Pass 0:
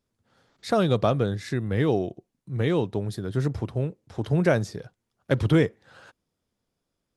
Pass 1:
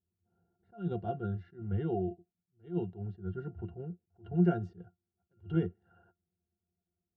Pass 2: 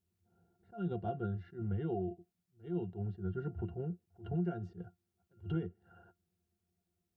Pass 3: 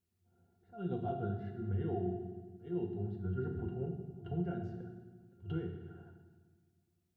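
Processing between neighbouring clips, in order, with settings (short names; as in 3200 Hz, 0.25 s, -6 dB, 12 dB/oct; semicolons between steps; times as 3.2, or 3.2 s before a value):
octave resonator F, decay 0.11 s; low-pass opened by the level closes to 860 Hz, open at -26.5 dBFS; attack slew limiter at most 210 dB/s
compressor 4:1, threshold -38 dBFS, peak gain reduction 14 dB; gain +4 dB
flange 1.6 Hz, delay 6.7 ms, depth 1.2 ms, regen -83%; reverb RT60 1.4 s, pre-delay 4 ms, DRR 2.5 dB; gain +2.5 dB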